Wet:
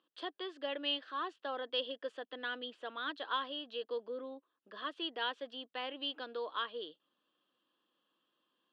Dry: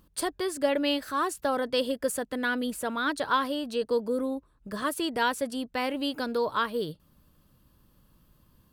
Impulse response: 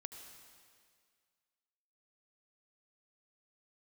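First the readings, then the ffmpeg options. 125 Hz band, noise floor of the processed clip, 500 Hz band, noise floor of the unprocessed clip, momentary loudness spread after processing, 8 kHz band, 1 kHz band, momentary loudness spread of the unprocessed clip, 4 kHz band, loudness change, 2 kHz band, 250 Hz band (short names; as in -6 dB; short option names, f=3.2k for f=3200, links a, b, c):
under -25 dB, -84 dBFS, -12.5 dB, -64 dBFS, 8 LU, under -35 dB, -11.0 dB, 6 LU, -3.5 dB, -10.5 dB, -10.0 dB, -17.5 dB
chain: -af "highpass=f=380:w=0.5412,highpass=f=380:w=1.3066,equalizer=f=420:t=q:w=4:g=-7,equalizer=f=600:t=q:w=4:g=-8,equalizer=f=900:t=q:w=4:g=-8,equalizer=f=1.4k:t=q:w=4:g=-5,equalizer=f=2.2k:t=q:w=4:g=-10,equalizer=f=3.2k:t=q:w=4:g=8,lowpass=f=3.3k:w=0.5412,lowpass=f=3.3k:w=1.3066,volume=-5.5dB"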